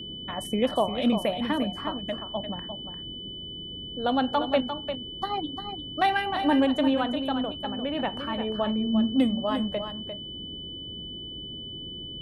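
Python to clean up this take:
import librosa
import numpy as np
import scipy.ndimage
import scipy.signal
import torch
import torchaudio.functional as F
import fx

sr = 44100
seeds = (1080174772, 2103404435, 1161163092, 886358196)

y = fx.notch(x, sr, hz=3000.0, q=30.0)
y = fx.noise_reduce(y, sr, print_start_s=3.19, print_end_s=3.69, reduce_db=30.0)
y = fx.fix_echo_inverse(y, sr, delay_ms=349, level_db=-8.5)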